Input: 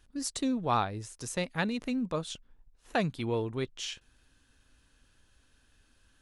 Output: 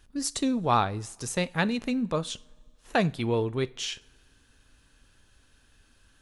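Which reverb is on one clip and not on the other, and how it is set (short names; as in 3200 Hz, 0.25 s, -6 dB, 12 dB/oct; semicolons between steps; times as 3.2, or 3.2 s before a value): two-slope reverb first 0.39 s, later 2.1 s, from -20 dB, DRR 16 dB; gain +4.5 dB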